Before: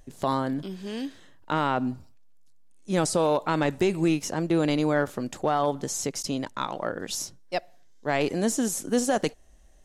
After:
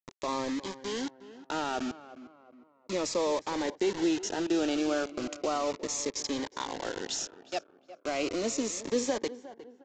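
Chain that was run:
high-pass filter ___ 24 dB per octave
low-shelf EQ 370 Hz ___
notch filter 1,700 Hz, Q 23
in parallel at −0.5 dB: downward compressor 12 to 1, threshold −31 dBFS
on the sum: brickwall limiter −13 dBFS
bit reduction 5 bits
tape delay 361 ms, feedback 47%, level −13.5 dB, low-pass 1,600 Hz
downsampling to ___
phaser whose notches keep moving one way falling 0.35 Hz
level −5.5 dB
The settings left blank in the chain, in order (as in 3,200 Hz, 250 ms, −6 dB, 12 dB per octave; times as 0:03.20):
290 Hz, +3 dB, 16,000 Hz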